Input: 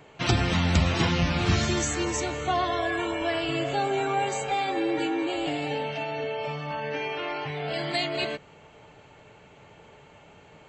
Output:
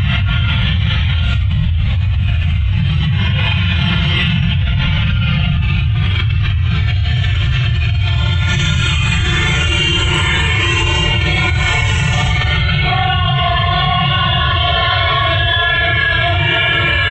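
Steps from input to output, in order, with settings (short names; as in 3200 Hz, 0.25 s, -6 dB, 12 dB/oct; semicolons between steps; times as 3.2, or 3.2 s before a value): reverb removal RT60 1.3 s; EQ curve 140 Hz 0 dB, 270 Hz -30 dB, 3200 Hz -5 dB, 4900 Hz -29 dB; time stretch by phase-locked vocoder 1.6×; early reflections 20 ms -13 dB, 55 ms -10 dB; non-linear reverb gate 0.33 s rising, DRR -0.5 dB; Paulstretch 4.2×, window 0.05 s, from 0.89; fast leveller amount 100%; gain +2.5 dB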